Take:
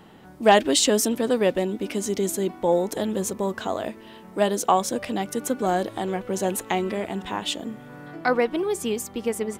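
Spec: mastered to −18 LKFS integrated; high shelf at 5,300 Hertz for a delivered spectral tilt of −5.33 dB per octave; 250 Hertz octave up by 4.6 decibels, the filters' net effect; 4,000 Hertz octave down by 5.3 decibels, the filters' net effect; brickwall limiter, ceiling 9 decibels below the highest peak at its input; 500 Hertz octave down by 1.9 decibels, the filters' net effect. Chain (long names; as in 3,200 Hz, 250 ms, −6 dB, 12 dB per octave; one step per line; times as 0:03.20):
parametric band 250 Hz +7 dB
parametric band 500 Hz −4.5 dB
parametric band 4,000 Hz −3.5 dB
high-shelf EQ 5,300 Hz −8.5 dB
level +8 dB
brickwall limiter −6.5 dBFS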